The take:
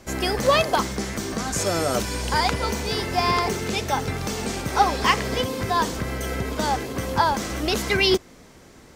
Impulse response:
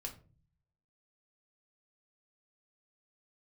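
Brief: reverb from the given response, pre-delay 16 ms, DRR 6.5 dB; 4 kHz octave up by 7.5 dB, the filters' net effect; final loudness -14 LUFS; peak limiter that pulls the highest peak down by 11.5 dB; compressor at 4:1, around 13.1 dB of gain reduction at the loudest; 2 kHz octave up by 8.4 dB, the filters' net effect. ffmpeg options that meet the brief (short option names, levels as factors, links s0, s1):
-filter_complex "[0:a]equalizer=f=2000:t=o:g=8.5,equalizer=f=4000:t=o:g=7,acompressor=threshold=0.0562:ratio=4,alimiter=limit=0.0891:level=0:latency=1,asplit=2[s0][s1];[1:a]atrim=start_sample=2205,adelay=16[s2];[s1][s2]afir=irnorm=-1:irlink=0,volume=0.631[s3];[s0][s3]amix=inputs=2:normalize=0,volume=5.62"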